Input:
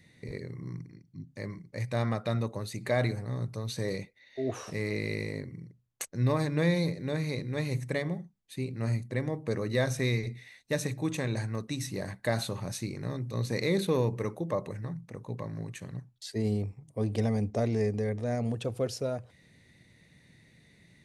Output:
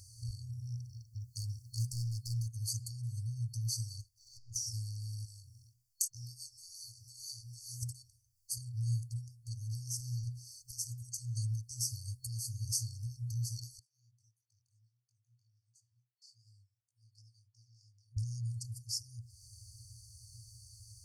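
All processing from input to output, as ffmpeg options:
-filter_complex "[0:a]asettb=1/sr,asplit=3[a][b][c];[a]atrim=end=1.204[d];[b]atrim=start=1.2:end=2.48,asetpts=PTS-STARTPTS,afade=t=in:d=0.004:c=qsin,afade=t=out:st=1.276:d=0.004:c=qsin,highshelf=f=4.8k:g=6.5,asoftclip=type=hard:threshold=-31.5dB[e];[c]atrim=start=2.476[f];[d][e]acrossfade=d=0.004:c1=hsin:c2=qsin[g];[g][f]acrossfade=d=0.004:c1=qsin:c2=hsin,asettb=1/sr,asplit=3[h][i][j];[h]atrim=end=4.014[k];[i]atrim=start=4.01:end=4.56,asetpts=PTS-STARTPTS,afade=t=in:d=0.004:c=qsin,afade=t=out:st=0.546:d=0.004:c=qsin,acompressor=threshold=-43dB:ratio=6:attack=3.2:release=140:knee=1:detection=peak,aeval=exprs='(tanh(316*val(0)+0.35)-tanh(0.35))/316':c=same[l];[j]atrim=start=4.556[m];[k][l]acrossfade=d=0.004:c1=hsin:c2=qsin[n];[n][m]acrossfade=d=0.004:c1=qsin:c2=hsin,asettb=1/sr,asplit=3[o][p][q];[o]atrim=end=5.254[r];[p]atrim=start=5.25:end=7.83,asetpts=PTS-STARTPTS,afade=t=in:d=0.004:c=qsin,afade=t=out:st=2.576:d=0.004:c=qsin,flanger=delay=18:depth=5.1:speed=1.8,equalizer=f=120:w=0.44:g=-14[s];[q]atrim=start=7.826[t];[r][s]acrossfade=d=0.004:c1=hsin:c2=qsin[u];[u][t]acrossfade=d=0.004:c1=qsin:c2=hsin,asettb=1/sr,asplit=3[v][w][x];[v]atrim=end=13.794[y];[w]atrim=start=13.79:end=18.17,asetpts=PTS-STARTPTS,afade=t=in:d=0.004:c=qsin,afade=t=out:st=4.376:d=0.004:c=qsin,bandpass=f=1.5k:t=q:w=7.4,flanger=delay=17.5:depth=7.9:speed=2.9[z];[x]atrim=start=18.166[aa];[y][z]acrossfade=d=0.004:c1=hsin:c2=qsin[ab];[ab][aa]acrossfade=d=0.004:c1=qsin:c2=hsin,lowshelf=f=130:g=-9,acompressor=threshold=-46dB:ratio=4,afftfilt=real='re*(1-between(b*sr/4096,120,4400))':imag='im*(1-between(b*sr/4096,120,4400))':win_size=4096:overlap=0.75,volume=16dB"

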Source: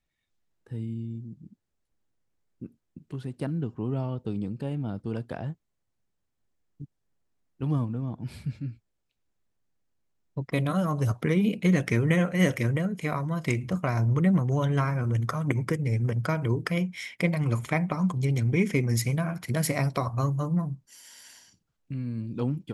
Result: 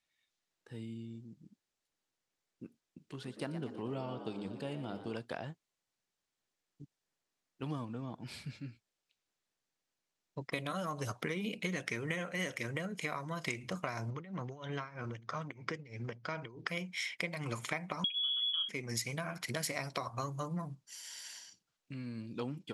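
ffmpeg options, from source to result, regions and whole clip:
-filter_complex "[0:a]asettb=1/sr,asplit=3[a][b][c];[a]atrim=end=3.024[d];[b]atrim=start=3.02:end=5.15,asetpts=PTS-STARTPTS,afade=t=in:d=0.004:c=qsin,afade=t=out:st=2.126:d=0.004:c=qsin,bandreject=f=103.6:t=h:w=4,bandreject=f=207.2:t=h:w=4,bandreject=f=310.8:t=h:w=4,bandreject=f=414.4:t=h:w=4,bandreject=f=518:t=h:w=4,bandreject=f=621.6:t=h:w=4,bandreject=f=725.2:t=h:w=4,bandreject=f=828.8:t=h:w=4,bandreject=f=932.4:t=h:w=4,bandreject=f=1.036k:t=h:w=4,bandreject=f=1.1396k:t=h:w=4,bandreject=f=1.2432k:t=h:w=4,bandreject=f=1.3468k:t=h:w=4,bandreject=f=1.4504k:t=h:w=4,bandreject=f=1.554k:t=h:w=4,bandreject=f=1.6576k:t=h:w=4,bandreject=f=1.7612k:t=h:w=4,asplit=7[e][f][g][h][i][j][k];[f]adelay=118,afreqshift=79,volume=-12.5dB[l];[g]adelay=236,afreqshift=158,volume=-17.2dB[m];[h]adelay=354,afreqshift=237,volume=-22dB[n];[i]adelay=472,afreqshift=316,volume=-26.7dB[o];[j]adelay=590,afreqshift=395,volume=-31.4dB[p];[k]adelay=708,afreqshift=474,volume=-36.2dB[q];[e][l][m][n][o][p][q]amix=inputs=7:normalize=0,atrim=end_sample=93933[r];[c]atrim=start=5.146[s];[d][r]acrossfade=d=0.004:c1=hsin:c2=qsin[t];[t][s]acrossfade=d=0.004:c1=qsin:c2=hsin,asettb=1/sr,asplit=3[u][v][w];[u]atrim=end=14.104[x];[v]atrim=start=14.1:end=16.68,asetpts=PTS-STARTPTS,afade=t=in:d=0.004:c=qsin,afade=t=out:st=2.576:d=0.004:c=qsin,lowpass=f=5.6k:w=0.5412,lowpass=f=5.6k:w=1.3066,acompressor=threshold=-25dB:ratio=2.5:attack=3.2:release=140:knee=1:detection=peak,tremolo=f=3.1:d=0.87[y];[w]atrim=start=16.676[z];[x][y]acrossfade=d=0.004:c1=hsin:c2=qsin[aa];[aa][z]acrossfade=d=0.004:c1=qsin:c2=hsin,asettb=1/sr,asplit=3[ab][ac][ad];[ab]atrim=end=18.044[ae];[ac]atrim=start=18.04:end=18.69,asetpts=PTS-STARTPTS,afade=t=in:d=0.004:c=qsin,afade=t=out:st=0.646:d=0.004:c=qsin,equalizer=f=2.5k:t=o:w=1.8:g=-9.5,lowpass=f=3k:t=q:w=0.5098,lowpass=f=3k:t=q:w=0.6013,lowpass=f=3k:t=q:w=0.9,lowpass=f=3k:t=q:w=2.563,afreqshift=-3500[af];[ad]atrim=start=18.686[ag];[ae][af]acrossfade=d=0.004:c1=hsin:c2=qsin[ah];[ah][ag]acrossfade=d=0.004:c1=qsin:c2=hsin,lowpass=4.9k,aemphasis=mode=production:type=riaa,acompressor=threshold=-32dB:ratio=6,volume=-1.5dB"

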